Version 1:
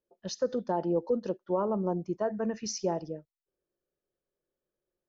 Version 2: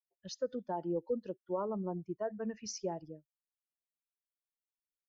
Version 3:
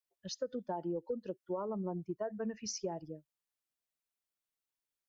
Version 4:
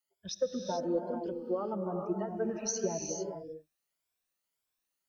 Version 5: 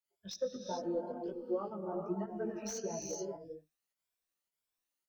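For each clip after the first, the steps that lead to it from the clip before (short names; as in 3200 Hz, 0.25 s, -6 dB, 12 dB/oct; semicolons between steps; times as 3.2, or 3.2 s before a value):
per-bin expansion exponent 1.5; gain -5 dB
compressor, threshold -36 dBFS, peak gain reduction 7.5 dB; gain +2.5 dB
moving spectral ripple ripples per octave 1.7, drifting +1.8 Hz, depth 19 dB; non-linear reverb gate 0.47 s rising, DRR 2.5 dB
pump 107 bpm, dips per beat 1, -9 dB, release 0.112 s; chorus voices 2, 1.3 Hz, delay 17 ms, depth 3 ms; slew limiter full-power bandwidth 61 Hz; gain -1 dB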